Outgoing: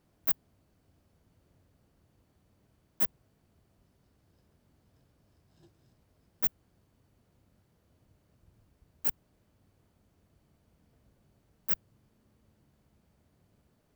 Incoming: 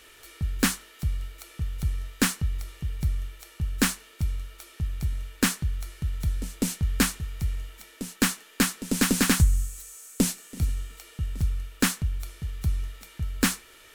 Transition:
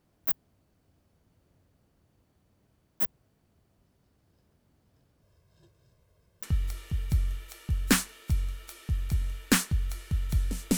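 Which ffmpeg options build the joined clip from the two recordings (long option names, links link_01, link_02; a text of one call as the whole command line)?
ffmpeg -i cue0.wav -i cue1.wav -filter_complex "[0:a]asettb=1/sr,asplit=3[link_01][link_02][link_03];[link_01]atrim=end=5.224[link_04];[link_02]atrim=start=5.22:end=6.43,asetpts=PTS-STARTPTS,afade=type=in:duration=0.004:curve=qsin,afade=type=out:start_time=1.206:duration=0.004:curve=qsin,aecho=1:1:1.9:0.62,atrim=end_sample=53361[link_05];[link_03]atrim=start=6.426[link_06];[link_04][link_05]acrossfade=duration=0.004:curve1=hsin:curve2=qsin[link_07];[link_07][link_06]acrossfade=duration=0.004:curve1=qsin:curve2=hsin,apad=whole_dur=10.77,atrim=end=10.77,atrim=end=6.432[link_08];[1:a]atrim=start=2.338:end=6.68[link_09];[link_08][link_09]acrossfade=duration=0.004:curve1=hsin:curve2=hsin" out.wav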